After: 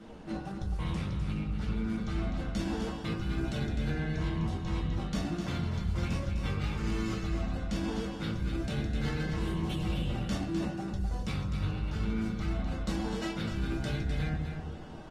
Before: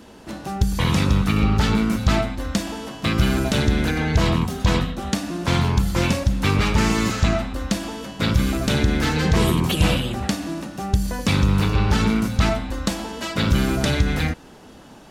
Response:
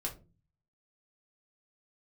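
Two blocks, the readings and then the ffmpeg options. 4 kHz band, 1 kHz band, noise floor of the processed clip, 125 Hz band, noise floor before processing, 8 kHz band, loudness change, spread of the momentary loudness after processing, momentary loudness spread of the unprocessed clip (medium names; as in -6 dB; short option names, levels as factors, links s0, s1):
-16.5 dB, -15.0 dB, -41 dBFS, -12.0 dB, -45 dBFS, -19.0 dB, -12.5 dB, 2 LU, 7 LU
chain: -filter_complex "[0:a]acrossover=split=450[s0][s1];[s1]adynamicsmooth=sensitivity=4.5:basefreq=5900[s2];[s0][s2]amix=inputs=2:normalize=0[s3];[1:a]atrim=start_sample=2205[s4];[s3][s4]afir=irnorm=-1:irlink=0,aresample=32000,aresample=44100,areverse,acompressor=threshold=0.0562:ratio=10,areverse,aecho=1:1:254|508|762:0.447|0.067|0.0101,volume=0.596" -ar 48000 -c:a libopus -b:a 24k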